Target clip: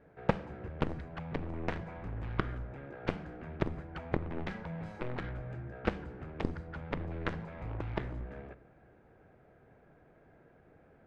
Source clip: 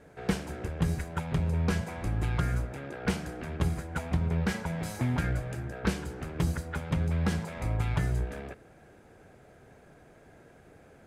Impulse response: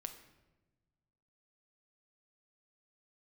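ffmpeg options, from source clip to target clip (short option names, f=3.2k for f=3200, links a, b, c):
-filter_complex "[0:a]lowpass=2.1k,aeval=exprs='0.2*(cos(1*acos(clip(val(0)/0.2,-1,1)))-cos(1*PI/2))+0.0891*(cos(3*acos(clip(val(0)/0.2,-1,1)))-cos(3*PI/2))+0.02*(cos(4*acos(clip(val(0)/0.2,-1,1)))-cos(4*PI/2))+0.00891*(cos(6*acos(clip(val(0)/0.2,-1,1)))-cos(6*PI/2))':c=same,asplit=2[a][b];[1:a]atrim=start_sample=2205[c];[b][c]afir=irnorm=-1:irlink=0,volume=-2.5dB[d];[a][d]amix=inputs=2:normalize=0"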